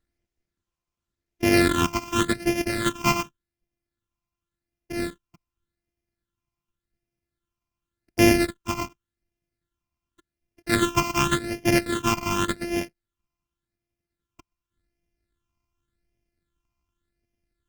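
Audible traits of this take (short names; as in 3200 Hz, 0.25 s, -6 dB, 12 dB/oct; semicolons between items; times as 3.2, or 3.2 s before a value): a buzz of ramps at a fixed pitch in blocks of 128 samples; phasing stages 8, 0.88 Hz, lowest notch 500–1200 Hz; Opus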